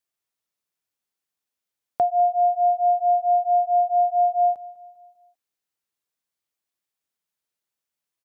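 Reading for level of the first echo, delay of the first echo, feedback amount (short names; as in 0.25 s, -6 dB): -19.0 dB, 0.199 s, 47%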